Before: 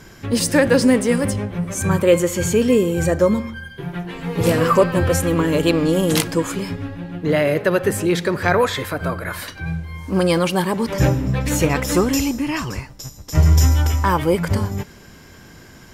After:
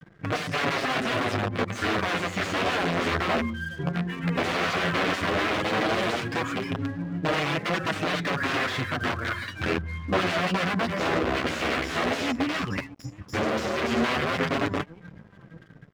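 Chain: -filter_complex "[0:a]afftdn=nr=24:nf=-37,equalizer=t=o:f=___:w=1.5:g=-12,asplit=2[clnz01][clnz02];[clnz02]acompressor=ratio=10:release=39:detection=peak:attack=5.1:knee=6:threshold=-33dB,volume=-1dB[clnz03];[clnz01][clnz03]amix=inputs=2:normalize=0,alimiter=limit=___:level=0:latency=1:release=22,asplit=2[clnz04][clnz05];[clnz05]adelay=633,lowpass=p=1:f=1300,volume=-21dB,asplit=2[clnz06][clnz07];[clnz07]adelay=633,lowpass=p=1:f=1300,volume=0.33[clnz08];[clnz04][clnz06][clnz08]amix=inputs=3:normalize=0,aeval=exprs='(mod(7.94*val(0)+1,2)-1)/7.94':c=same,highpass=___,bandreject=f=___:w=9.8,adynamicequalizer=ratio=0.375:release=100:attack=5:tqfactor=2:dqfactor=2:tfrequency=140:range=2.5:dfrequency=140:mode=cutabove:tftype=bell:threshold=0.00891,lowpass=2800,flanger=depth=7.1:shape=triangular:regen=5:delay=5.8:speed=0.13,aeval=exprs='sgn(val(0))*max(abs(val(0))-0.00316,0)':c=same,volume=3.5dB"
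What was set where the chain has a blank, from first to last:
540, -10dB, 100, 890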